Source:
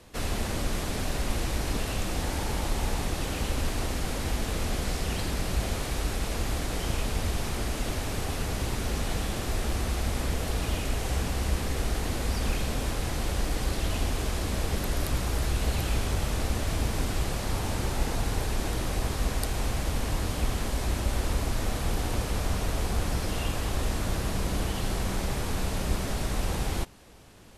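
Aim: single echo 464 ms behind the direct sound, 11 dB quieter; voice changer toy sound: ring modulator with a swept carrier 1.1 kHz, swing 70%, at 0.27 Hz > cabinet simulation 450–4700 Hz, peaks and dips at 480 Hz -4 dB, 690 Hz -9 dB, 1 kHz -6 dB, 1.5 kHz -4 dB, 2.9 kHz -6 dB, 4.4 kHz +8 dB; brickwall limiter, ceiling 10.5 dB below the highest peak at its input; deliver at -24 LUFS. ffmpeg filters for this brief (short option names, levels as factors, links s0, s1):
-af "alimiter=limit=0.0794:level=0:latency=1,aecho=1:1:464:0.282,aeval=exprs='val(0)*sin(2*PI*1100*n/s+1100*0.7/0.27*sin(2*PI*0.27*n/s))':c=same,highpass=450,equalizer=f=480:t=q:w=4:g=-4,equalizer=f=690:t=q:w=4:g=-9,equalizer=f=1000:t=q:w=4:g=-6,equalizer=f=1500:t=q:w=4:g=-4,equalizer=f=2900:t=q:w=4:g=-6,equalizer=f=4400:t=q:w=4:g=8,lowpass=f=4700:w=0.5412,lowpass=f=4700:w=1.3066,volume=3.76"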